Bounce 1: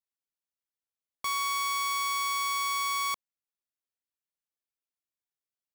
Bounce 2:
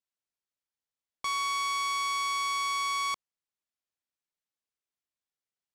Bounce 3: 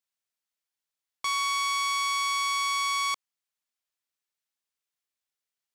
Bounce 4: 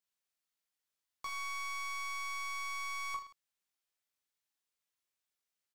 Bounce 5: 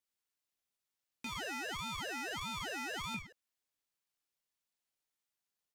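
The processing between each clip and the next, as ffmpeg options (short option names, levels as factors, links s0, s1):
-af "lowpass=8300"
-af "tiltshelf=f=730:g=-4.5"
-filter_complex "[0:a]acrossover=split=2700[s0][s1];[s1]acompressor=threshold=0.0126:ratio=4:attack=1:release=60[s2];[s0][s2]amix=inputs=2:normalize=0,asoftclip=type=tanh:threshold=0.0224,aecho=1:1:20|46|79.8|123.7|180.9:0.631|0.398|0.251|0.158|0.1,volume=0.708"
-af "aeval=exprs='val(0)*sin(2*PI*800*n/s+800*0.7/1.6*sin(2*PI*1.6*n/s))':c=same,volume=1.19"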